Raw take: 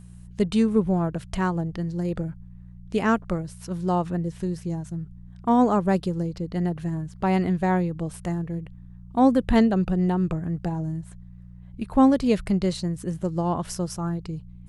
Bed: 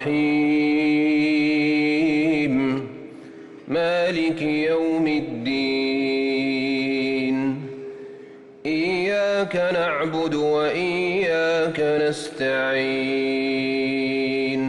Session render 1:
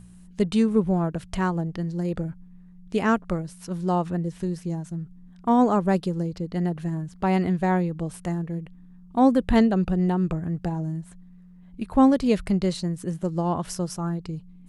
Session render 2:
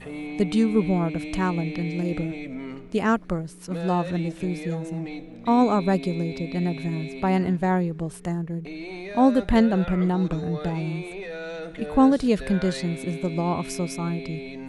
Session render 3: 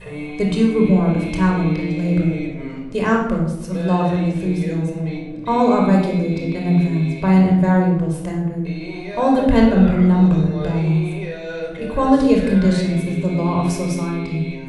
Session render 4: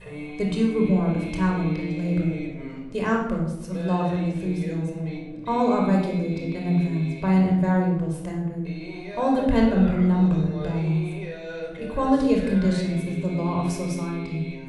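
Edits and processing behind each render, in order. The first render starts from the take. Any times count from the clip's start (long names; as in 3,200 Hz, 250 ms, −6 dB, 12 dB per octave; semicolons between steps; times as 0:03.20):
hum removal 60 Hz, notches 2
mix in bed −14 dB
rectangular room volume 2,700 cubic metres, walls furnished, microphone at 5.2 metres
level −6 dB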